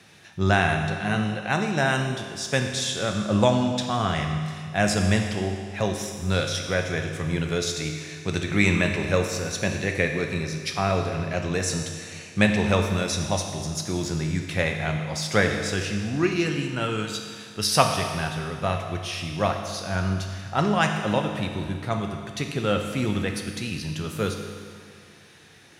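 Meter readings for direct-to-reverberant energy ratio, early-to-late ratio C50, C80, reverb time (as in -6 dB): 3.0 dB, 5.0 dB, 6.0 dB, 2.0 s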